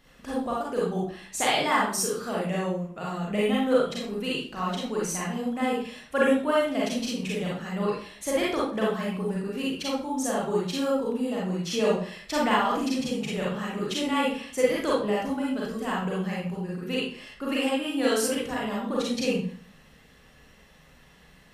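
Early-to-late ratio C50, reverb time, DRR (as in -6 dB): -1.0 dB, 0.50 s, -6.0 dB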